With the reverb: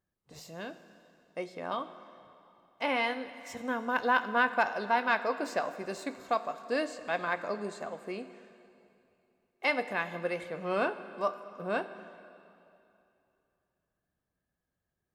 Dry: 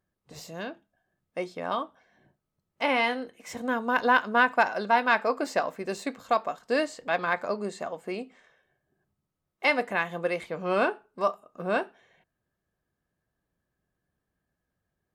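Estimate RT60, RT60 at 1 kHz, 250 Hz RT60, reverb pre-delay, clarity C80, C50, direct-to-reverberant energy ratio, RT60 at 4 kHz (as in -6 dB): 2.8 s, 2.8 s, 2.8 s, 7 ms, 13.0 dB, 12.5 dB, 11.5 dB, 2.6 s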